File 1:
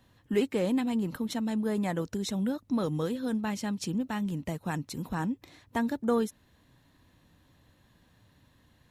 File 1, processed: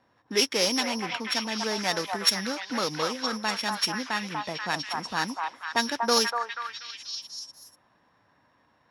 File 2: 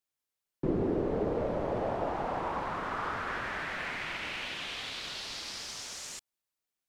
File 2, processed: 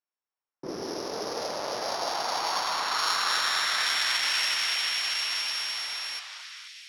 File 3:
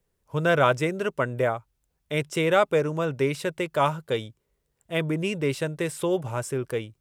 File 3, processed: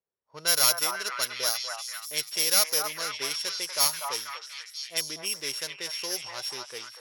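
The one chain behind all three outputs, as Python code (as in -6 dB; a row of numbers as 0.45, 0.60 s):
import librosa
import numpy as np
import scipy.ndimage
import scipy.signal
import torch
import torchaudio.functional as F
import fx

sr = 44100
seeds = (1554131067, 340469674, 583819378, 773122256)

p1 = np.r_[np.sort(x[:len(x) // 8 * 8].reshape(-1, 8), axis=1).ravel(), x[len(x) // 8 * 8:]]
p2 = np.diff(p1, prepend=0.0)
p3 = fx.fold_sine(p2, sr, drive_db=3, ceiling_db=-4.0)
p4 = fx.env_lowpass(p3, sr, base_hz=960.0, full_db=-23.0)
p5 = p4 + fx.echo_stepped(p4, sr, ms=242, hz=960.0, octaves=0.7, feedback_pct=70, wet_db=0.0, dry=0)
y = p5 * 10.0 ** (-30 / 20.0) / np.sqrt(np.mean(np.square(p5)))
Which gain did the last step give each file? +17.5, +13.0, +1.5 dB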